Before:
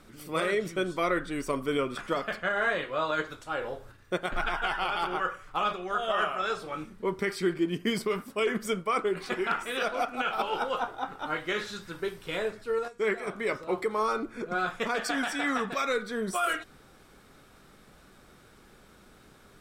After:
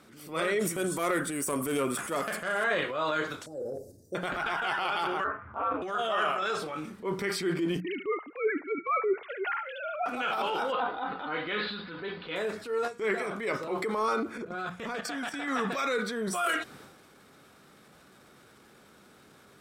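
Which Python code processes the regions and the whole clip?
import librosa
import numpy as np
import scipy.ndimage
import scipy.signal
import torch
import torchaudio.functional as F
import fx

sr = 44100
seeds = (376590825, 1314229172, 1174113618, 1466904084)

y = fx.chain(x, sr, fx.self_delay(depth_ms=0.056),
    fx.high_shelf_res(hz=6500.0, db=13.5, q=1.5), at=(0.59, 2.64))
y = fx.chain(y, sr, fx.cheby2_bandstop(low_hz=940.0, high_hz=3400.0, order=4, stop_db=40),
    fx.peak_eq(hz=1100.0, db=5.5, octaves=1.4), at=(3.46, 4.15))
y = fx.chain(y, sr, fx.lowpass(hz=1700.0, slope=24),
    fx.ring_mod(carrier_hz=100.0),
    fx.doubler(ms=14.0, db=-3.5), at=(5.24, 5.82))
y = fx.chain(y, sr, fx.sine_speech(),
    fx.echo_wet_highpass(ms=73, feedback_pct=34, hz=2500.0, wet_db=-9), at=(7.8, 10.06))
y = fx.chain(y, sr, fx.steep_lowpass(hz=4600.0, slope=96),
    fx.comb(ms=4.0, depth=0.4), at=(10.72, 12.36))
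y = fx.chain(y, sr, fx.low_shelf(hz=150.0, db=11.0),
    fx.level_steps(step_db=17), at=(14.38, 15.48))
y = scipy.signal.sosfilt(scipy.signal.butter(2, 110.0, 'highpass', fs=sr, output='sos'), y)
y = fx.hum_notches(y, sr, base_hz=60, count=3)
y = fx.transient(y, sr, attack_db=-6, sustain_db=7)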